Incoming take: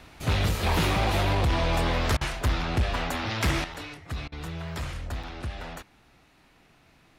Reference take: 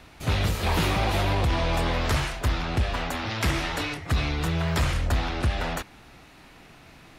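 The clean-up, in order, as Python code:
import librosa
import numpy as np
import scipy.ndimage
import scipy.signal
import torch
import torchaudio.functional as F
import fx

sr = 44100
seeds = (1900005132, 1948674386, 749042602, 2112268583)

y = fx.fix_declip(x, sr, threshold_db=-19.0)
y = fx.fix_interpolate(y, sr, at_s=(3.74, 5.23), length_ms=5.4)
y = fx.fix_interpolate(y, sr, at_s=(2.17, 4.28), length_ms=40.0)
y = fx.gain(y, sr, db=fx.steps((0.0, 0.0), (3.64, 9.5)))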